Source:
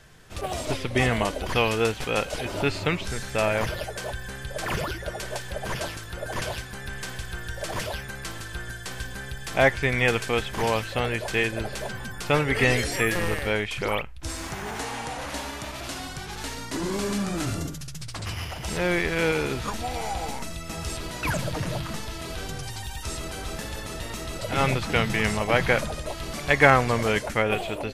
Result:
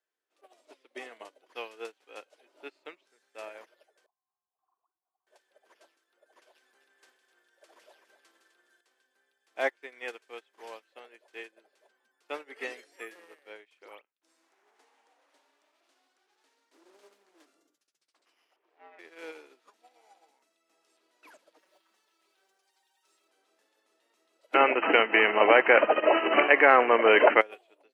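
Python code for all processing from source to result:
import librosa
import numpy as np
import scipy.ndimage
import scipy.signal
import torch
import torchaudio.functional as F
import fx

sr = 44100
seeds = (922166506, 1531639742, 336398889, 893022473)

y = fx.chain(x, sr, fx.formant_cascade(vowel='a'),
    fx.fixed_phaser(hz=2200.0, stages=6), at=(4.06, 5.27))
y = fx.chain(y, sr, fx.echo_single(ms=255, db=-8.5),
    fx.env_flatten(amount_pct=70), at=(6.55, 8.81))
y = fx.chain(y, sr, fx.highpass(hz=190.0, slope=12),
    fx.doppler_dist(depth_ms=0.52), at=(14.44, 17.46))
y = fx.chain(y, sr, fx.peak_eq(hz=560.0, db=4.0, octaves=0.75),
    fx.ring_mod(carrier_hz=270.0),
    fx.bandpass_edges(low_hz=430.0, high_hz=2200.0), at=(18.56, 18.99))
y = fx.chain(y, sr, fx.quant_float(bits=2),
    fx.low_shelf(hz=440.0, db=-7.0),
    fx.comb(ms=5.3, depth=0.64), at=(21.58, 23.28))
y = fx.chain(y, sr, fx.brickwall_lowpass(high_hz=3100.0),
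    fx.env_flatten(amount_pct=100), at=(24.54, 27.41))
y = scipy.signal.sosfilt(scipy.signal.butter(6, 300.0, 'highpass', fs=sr, output='sos'), y)
y = fx.high_shelf(y, sr, hz=6300.0, db=-4.5)
y = fx.upward_expand(y, sr, threshold_db=-34.0, expansion=2.5)
y = y * librosa.db_to_amplitude(-2.0)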